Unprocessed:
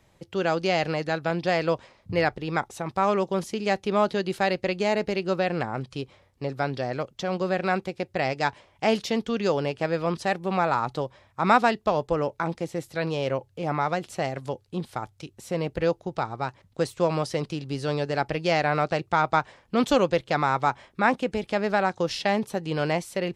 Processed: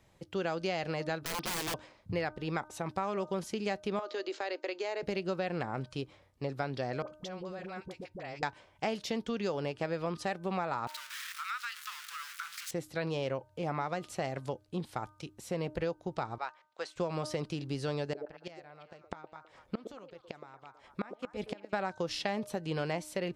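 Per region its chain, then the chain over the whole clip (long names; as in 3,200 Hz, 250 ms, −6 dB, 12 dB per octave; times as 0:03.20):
0:01.23–0:01.74: high-pass filter 190 Hz + wrap-around overflow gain 25 dB
0:03.99–0:05.03: Chebyshev band-pass filter 280–7,200 Hz, order 5 + downward compressor 3 to 1, threshold −28 dBFS
0:07.02–0:08.43: downward compressor 5 to 1, threshold −35 dBFS + all-pass dispersion highs, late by 57 ms, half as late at 680 Hz
0:10.87–0:12.71: converter with a step at zero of −28.5 dBFS + elliptic high-pass filter 1,300 Hz, stop band 50 dB + downward compressor 3 to 1, threshold −32 dBFS
0:16.38–0:16.96: high-pass filter 830 Hz + high-frequency loss of the air 97 metres
0:18.03–0:21.73: gate with flip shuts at −16 dBFS, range −26 dB + echo through a band-pass that steps 116 ms, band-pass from 430 Hz, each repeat 1.4 octaves, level −5 dB
whole clip: hum removal 306.2 Hz, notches 5; downward compressor, threshold −26 dBFS; level −4 dB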